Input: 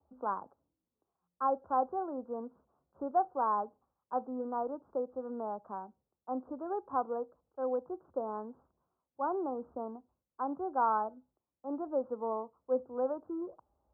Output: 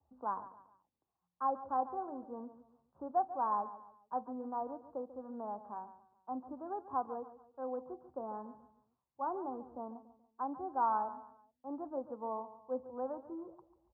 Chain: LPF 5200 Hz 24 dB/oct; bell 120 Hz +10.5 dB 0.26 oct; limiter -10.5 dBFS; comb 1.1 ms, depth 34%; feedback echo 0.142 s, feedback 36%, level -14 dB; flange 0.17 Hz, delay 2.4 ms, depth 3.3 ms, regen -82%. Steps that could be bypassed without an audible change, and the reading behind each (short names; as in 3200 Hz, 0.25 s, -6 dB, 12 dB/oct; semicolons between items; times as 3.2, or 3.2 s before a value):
LPF 5200 Hz: input band ends at 1500 Hz; limiter -10.5 dBFS: input peak -18.0 dBFS